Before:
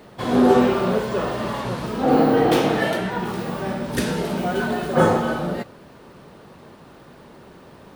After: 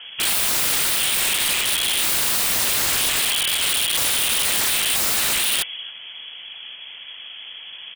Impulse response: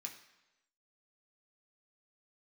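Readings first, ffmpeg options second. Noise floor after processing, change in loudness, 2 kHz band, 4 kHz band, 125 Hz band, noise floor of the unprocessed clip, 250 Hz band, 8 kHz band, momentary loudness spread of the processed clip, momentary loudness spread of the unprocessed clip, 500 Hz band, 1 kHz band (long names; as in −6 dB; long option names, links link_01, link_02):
−39 dBFS, +3.5 dB, +4.5 dB, +15.5 dB, −14.5 dB, −46 dBFS, −19.5 dB, +21.5 dB, 17 LU, 11 LU, −17.0 dB, −8.0 dB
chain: -filter_complex "[0:a]highpass=frequency=52:poles=1,lowshelf=frequency=390:gain=4,acontrast=45,lowpass=frequency=3000:width_type=q:width=0.5098,lowpass=frequency=3000:width_type=q:width=0.6013,lowpass=frequency=3000:width_type=q:width=0.9,lowpass=frequency=3000:width_type=q:width=2.563,afreqshift=-3500,asplit=2[link_01][link_02];[link_02]aecho=0:1:273:0.126[link_03];[link_01][link_03]amix=inputs=2:normalize=0,aeval=exprs='(mod(5.96*val(0)+1,2)-1)/5.96':channel_layout=same"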